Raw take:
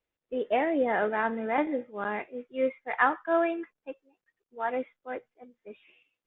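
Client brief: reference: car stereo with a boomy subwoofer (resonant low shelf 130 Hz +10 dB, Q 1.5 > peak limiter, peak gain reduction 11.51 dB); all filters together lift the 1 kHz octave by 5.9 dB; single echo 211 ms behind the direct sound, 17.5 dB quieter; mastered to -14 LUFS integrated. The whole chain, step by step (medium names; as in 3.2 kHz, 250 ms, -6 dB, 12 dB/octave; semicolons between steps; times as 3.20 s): resonant low shelf 130 Hz +10 dB, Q 1.5; peaking EQ 1 kHz +8 dB; delay 211 ms -17.5 dB; trim +15.5 dB; peak limiter -1.5 dBFS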